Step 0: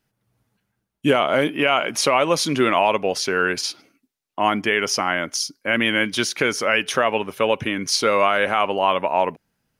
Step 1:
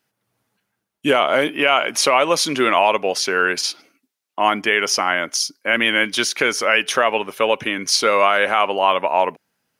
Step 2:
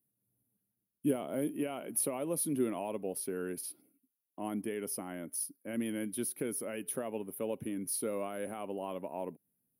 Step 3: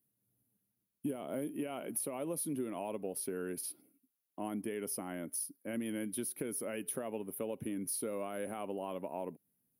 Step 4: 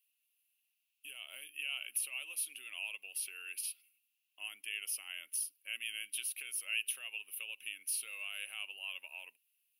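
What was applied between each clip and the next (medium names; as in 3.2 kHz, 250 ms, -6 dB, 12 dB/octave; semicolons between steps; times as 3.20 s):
high-pass 410 Hz 6 dB/octave; trim +3.5 dB
FFT filter 270 Hz 0 dB, 1.2 kHz -24 dB, 7.1 kHz -25 dB, 10 kHz +6 dB; trim -7.5 dB
compression 6:1, threshold -35 dBFS, peak gain reduction 10 dB; trim +1 dB
resonant high-pass 2.7 kHz, resonance Q 11; trim +1 dB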